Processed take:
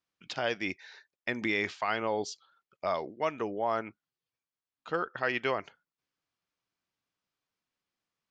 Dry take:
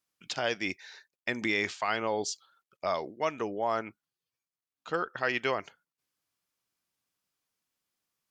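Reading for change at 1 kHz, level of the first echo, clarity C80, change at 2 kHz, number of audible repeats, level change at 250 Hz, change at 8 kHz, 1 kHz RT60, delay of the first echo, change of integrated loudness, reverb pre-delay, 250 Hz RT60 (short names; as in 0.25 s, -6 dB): -0.5 dB, none, none, -1.0 dB, none, 0.0 dB, -7.5 dB, none, none, -0.5 dB, none, none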